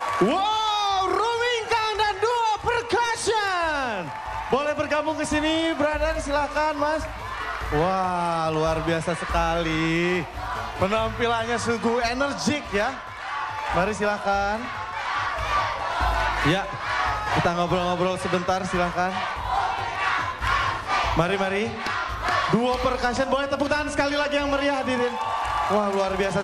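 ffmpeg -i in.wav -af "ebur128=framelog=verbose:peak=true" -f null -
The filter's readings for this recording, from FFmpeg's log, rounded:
Integrated loudness:
  I:         -24.0 LUFS
  Threshold: -34.0 LUFS
Loudness range:
  LRA:         1.7 LU
  Threshold: -44.2 LUFS
  LRA low:   -24.9 LUFS
  LRA high:  -23.3 LUFS
True peak:
  Peak:       -9.4 dBFS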